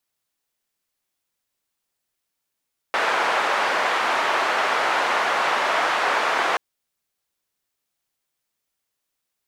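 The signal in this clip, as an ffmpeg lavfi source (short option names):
-f lavfi -i "anoisesrc=c=white:d=3.63:r=44100:seed=1,highpass=f=690,lowpass=f=1300,volume=-1.9dB"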